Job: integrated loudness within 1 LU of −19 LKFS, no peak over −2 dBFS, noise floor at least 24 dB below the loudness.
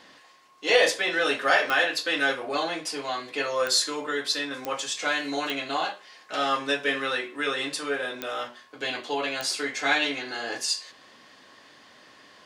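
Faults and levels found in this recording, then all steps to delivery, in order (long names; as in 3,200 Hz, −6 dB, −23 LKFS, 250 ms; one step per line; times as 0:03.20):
number of clicks 6; integrated loudness −26.5 LKFS; sample peak −8.0 dBFS; target loudness −19.0 LKFS
→ click removal
level +7.5 dB
brickwall limiter −2 dBFS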